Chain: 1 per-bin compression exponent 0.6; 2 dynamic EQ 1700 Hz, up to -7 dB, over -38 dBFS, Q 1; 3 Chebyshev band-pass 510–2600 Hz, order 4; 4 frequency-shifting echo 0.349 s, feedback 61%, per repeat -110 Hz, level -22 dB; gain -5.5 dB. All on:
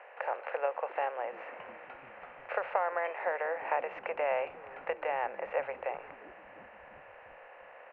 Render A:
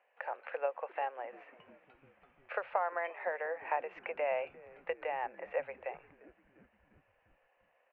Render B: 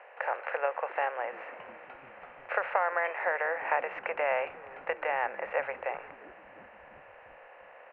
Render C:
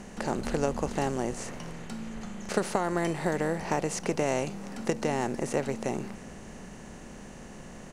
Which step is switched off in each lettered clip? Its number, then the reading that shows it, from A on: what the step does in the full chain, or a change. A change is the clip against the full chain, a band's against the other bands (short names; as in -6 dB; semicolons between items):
1, momentary loudness spread change -8 LU; 2, 2 kHz band +5.0 dB; 3, 250 Hz band +25.5 dB